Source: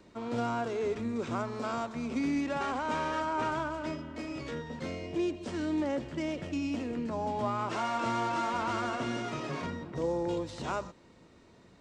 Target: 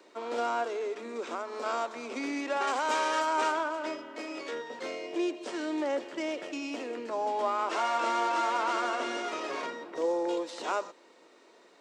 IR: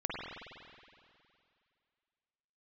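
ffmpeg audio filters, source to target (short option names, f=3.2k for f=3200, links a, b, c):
-filter_complex "[0:a]highpass=f=350:w=0.5412,highpass=f=350:w=1.3066,asettb=1/sr,asplit=3[a][b][c];[a]atrim=end=0.634[d];[b]atrim=start=0.63:end=1.66,asetpts=PTS-STARTPTS,afade=t=in:d=0.004:c=qsin,afade=t=out:st=1.026:d=0.004:c=qsin,acompressor=threshold=-36dB:ratio=3[e];[c]atrim=start=1.656[f];[d][e]acrossfade=d=0.004:c1=hsin:c2=qsin[g];[g][f]acrossfade=d=0.004:c1=qsin:c2=hsin,asettb=1/sr,asplit=3[h][i][j];[h]atrim=end=2.674[k];[i]atrim=start=2.67:end=3.52,asetpts=PTS-STARTPTS,afade=t=in:d=0.004:c=qsin,afade=t=out:st=0.846:d=0.004:c=qsin,highshelf=f=4.3k:g=11.5[l];[j]atrim=start=3.516[m];[k][l]acrossfade=d=0.004:c1=hsin:c2=qsin[n];[n][m]acrossfade=d=0.004:c1=qsin:c2=hsin,volume=3.5dB"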